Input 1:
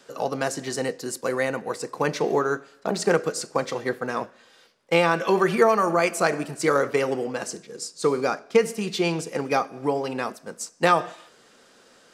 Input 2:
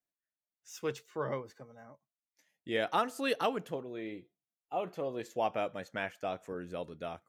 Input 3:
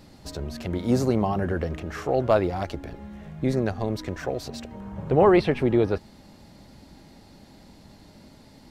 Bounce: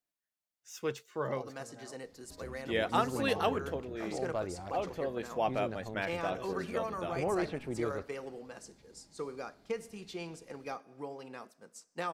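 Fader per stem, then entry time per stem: −18.0, +0.5, −15.5 decibels; 1.15, 0.00, 2.05 seconds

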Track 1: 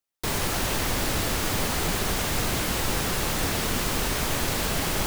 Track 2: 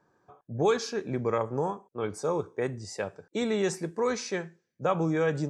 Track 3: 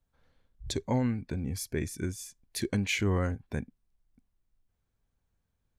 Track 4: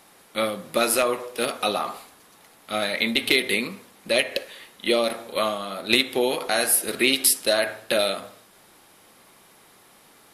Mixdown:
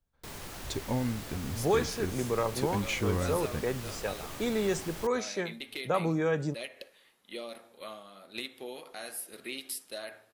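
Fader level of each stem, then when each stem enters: −16.5, −2.0, −3.0, −19.5 decibels; 0.00, 1.05, 0.00, 2.45 seconds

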